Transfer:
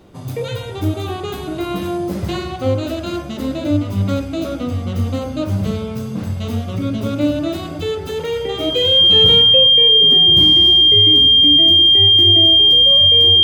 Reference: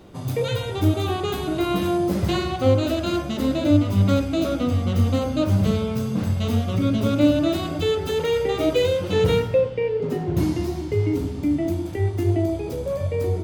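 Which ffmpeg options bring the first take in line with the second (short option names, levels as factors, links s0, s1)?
-af "bandreject=f=3200:w=30"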